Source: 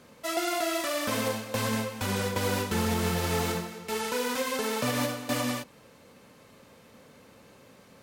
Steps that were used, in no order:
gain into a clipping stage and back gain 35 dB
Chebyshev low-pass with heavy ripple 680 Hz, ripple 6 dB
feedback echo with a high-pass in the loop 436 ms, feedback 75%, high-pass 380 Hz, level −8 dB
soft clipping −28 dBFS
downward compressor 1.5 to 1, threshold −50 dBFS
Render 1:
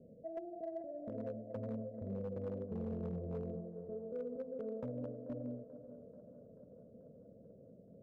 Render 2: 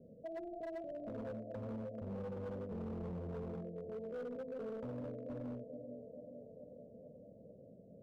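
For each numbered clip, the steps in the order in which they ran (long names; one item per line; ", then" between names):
downward compressor, then Chebyshev low-pass with heavy ripple, then soft clipping, then feedback echo with a high-pass in the loop, then gain into a clipping stage and back
feedback echo with a high-pass in the loop, then soft clipping, then Chebyshev low-pass with heavy ripple, then gain into a clipping stage and back, then downward compressor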